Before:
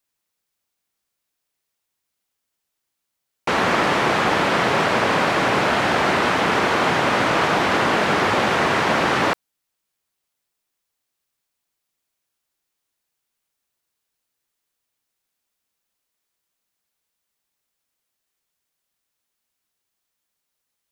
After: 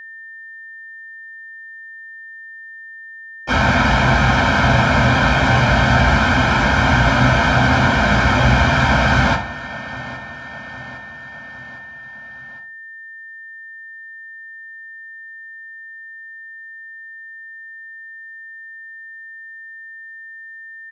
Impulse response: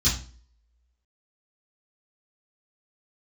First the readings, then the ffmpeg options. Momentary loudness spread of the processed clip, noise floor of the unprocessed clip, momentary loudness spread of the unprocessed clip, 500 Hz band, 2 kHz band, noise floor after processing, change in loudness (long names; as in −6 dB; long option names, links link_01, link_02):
21 LU, −80 dBFS, 1 LU, 0.0 dB, +5.5 dB, −37 dBFS, +3.5 dB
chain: -filter_complex "[0:a]aecho=1:1:1.3:0.86,aecho=1:1:809|1618|2427|3236:0.0944|0.0529|0.0296|0.0166,asplit=2[link_01][link_02];[link_02]highpass=frequency=720:poles=1,volume=17dB,asoftclip=type=tanh:threshold=-5.5dB[link_03];[link_01][link_03]amix=inputs=2:normalize=0,lowpass=frequency=1000:poles=1,volume=-6dB[link_04];[1:a]atrim=start_sample=2205[link_05];[link_04][link_05]afir=irnorm=-1:irlink=0,aeval=exprs='val(0)+0.0794*sin(2*PI*1800*n/s)':channel_layout=same,volume=-11.5dB"